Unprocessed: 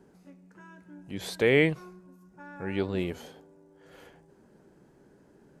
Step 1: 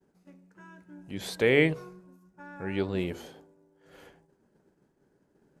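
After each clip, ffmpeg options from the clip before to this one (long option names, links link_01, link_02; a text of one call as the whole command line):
ffmpeg -i in.wav -af "bandreject=frequency=68.95:width_type=h:width=4,bandreject=frequency=137.9:width_type=h:width=4,bandreject=frequency=206.85:width_type=h:width=4,bandreject=frequency=275.8:width_type=h:width=4,bandreject=frequency=344.75:width_type=h:width=4,bandreject=frequency=413.7:width_type=h:width=4,bandreject=frequency=482.65:width_type=h:width=4,bandreject=frequency=551.6:width_type=h:width=4,bandreject=frequency=620.55:width_type=h:width=4,bandreject=frequency=689.5:width_type=h:width=4,bandreject=frequency=758.45:width_type=h:width=4,bandreject=frequency=827.4:width_type=h:width=4,bandreject=frequency=896.35:width_type=h:width=4,bandreject=frequency=965.3:width_type=h:width=4,bandreject=frequency=1034.25:width_type=h:width=4,bandreject=frequency=1103.2:width_type=h:width=4,bandreject=frequency=1172.15:width_type=h:width=4,bandreject=frequency=1241.1:width_type=h:width=4,agate=range=-33dB:threshold=-51dB:ratio=3:detection=peak" out.wav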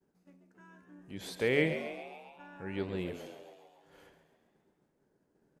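ffmpeg -i in.wav -filter_complex "[0:a]asplit=8[link_01][link_02][link_03][link_04][link_05][link_06][link_07][link_08];[link_02]adelay=136,afreqshift=75,volume=-10dB[link_09];[link_03]adelay=272,afreqshift=150,volume=-14.6dB[link_10];[link_04]adelay=408,afreqshift=225,volume=-19.2dB[link_11];[link_05]adelay=544,afreqshift=300,volume=-23.7dB[link_12];[link_06]adelay=680,afreqshift=375,volume=-28.3dB[link_13];[link_07]adelay=816,afreqshift=450,volume=-32.9dB[link_14];[link_08]adelay=952,afreqshift=525,volume=-37.5dB[link_15];[link_01][link_09][link_10][link_11][link_12][link_13][link_14][link_15]amix=inputs=8:normalize=0,volume=-6.5dB" out.wav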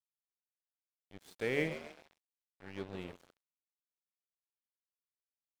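ffmpeg -i in.wav -af "aeval=exprs='sgn(val(0))*max(abs(val(0))-0.00841,0)':channel_layout=same,volume=-4dB" out.wav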